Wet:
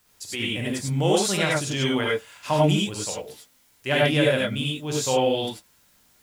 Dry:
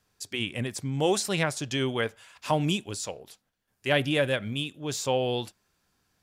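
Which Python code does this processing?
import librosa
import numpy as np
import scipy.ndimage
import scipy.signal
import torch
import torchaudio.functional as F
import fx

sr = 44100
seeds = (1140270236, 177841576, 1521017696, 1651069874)

y = fx.dmg_noise_colour(x, sr, seeds[0], colour='white', level_db=-66.0)
y = fx.rev_gated(y, sr, seeds[1], gate_ms=120, shape='rising', drr_db=-3.0)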